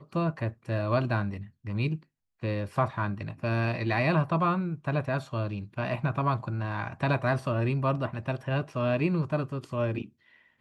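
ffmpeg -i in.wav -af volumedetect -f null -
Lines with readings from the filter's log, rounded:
mean_volume: -29.2 dB
max_volume: -13.2 dB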